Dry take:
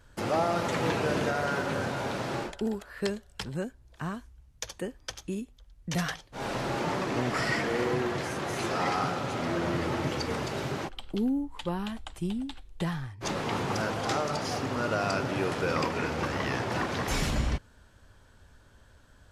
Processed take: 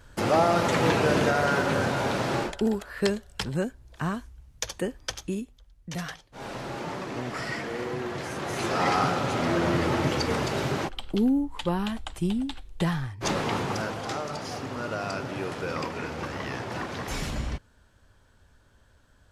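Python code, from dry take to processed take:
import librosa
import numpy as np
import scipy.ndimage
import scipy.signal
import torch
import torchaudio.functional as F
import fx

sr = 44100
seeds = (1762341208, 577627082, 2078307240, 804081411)

y = fx.gain(x, sr, db=fx.line((5.14, 5.5), (5.93, -4.0), (7.92, -4.0), (8.94, 5.0), (13.32, 5.0), (14.07, -3.0)))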